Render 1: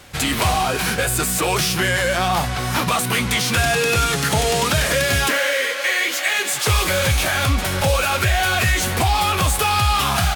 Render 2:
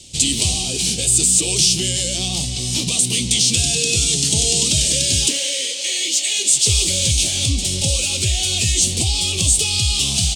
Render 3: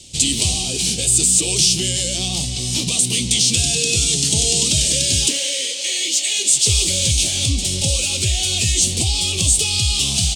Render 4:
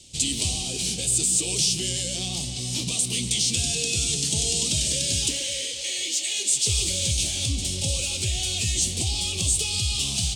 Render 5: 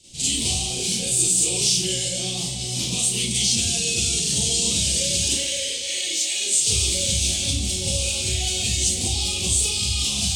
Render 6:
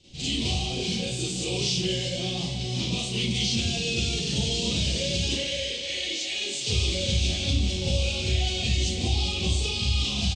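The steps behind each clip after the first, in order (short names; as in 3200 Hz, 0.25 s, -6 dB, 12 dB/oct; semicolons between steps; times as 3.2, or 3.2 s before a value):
EQ curve 340 Hz 0 dB, 1500 Hz -30 dB, 2900 Hz +4 dB, 8400 Hz +13 dB, 13000 Hz -13 dB; gain -1 dB
nothing audible
echo with dull and thin repeats by turns 0.121 s, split 2100 Hz, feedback 66%, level -11 dB; gain -7.5 dB
Schroeder reverb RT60 0.41 s, combs from 31 ms, DRR -8.5 dB; gain -6 dB
air absorption 190 m; feedback echo 0.376 s, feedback 41%, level -16.5 dB; gain +1.5 dB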